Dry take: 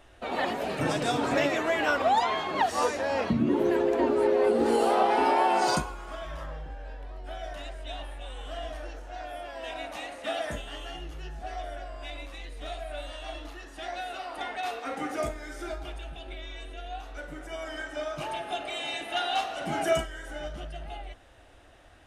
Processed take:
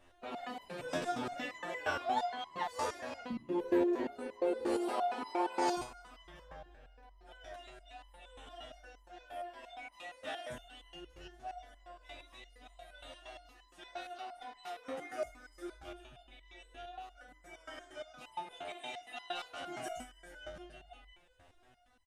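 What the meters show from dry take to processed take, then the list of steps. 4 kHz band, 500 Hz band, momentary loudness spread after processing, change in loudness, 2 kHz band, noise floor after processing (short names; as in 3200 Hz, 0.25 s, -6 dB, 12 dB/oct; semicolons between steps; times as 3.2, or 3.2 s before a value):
-12.0 dB, -11.5 dB, 21 LU, -10.0 dB, -11.5 dB, -64 dBFS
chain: echo 0.291 s -22.5 dB; stepped resonator 8.6 Hz 88–1000 Hz; gain +1.5 dB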